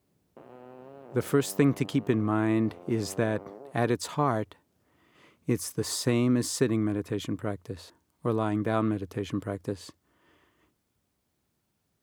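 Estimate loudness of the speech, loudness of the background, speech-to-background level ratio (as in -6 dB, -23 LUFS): -29.0 LUFS, -48.5 LUFS, 19.5 dB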